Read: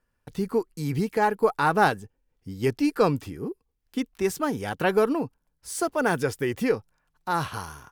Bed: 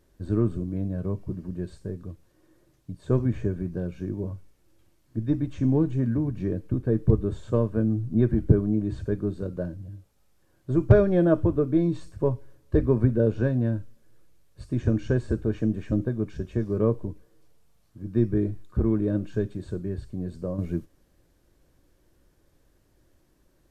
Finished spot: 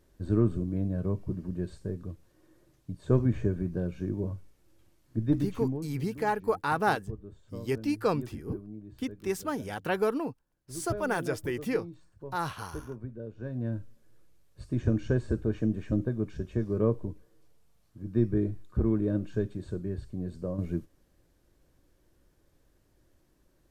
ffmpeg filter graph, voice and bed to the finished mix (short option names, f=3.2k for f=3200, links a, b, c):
-filter_complex "[0:a]adelay=5050,volume=-6dB[a];[1:a]volume=15dB,afade=t=out:st=5.36:d=0.48:silence=0.125893,afade=t=in:st=13.37:d=0.56:silence=0.158489[b];[a][b]amix=inputs=2:normalize=0"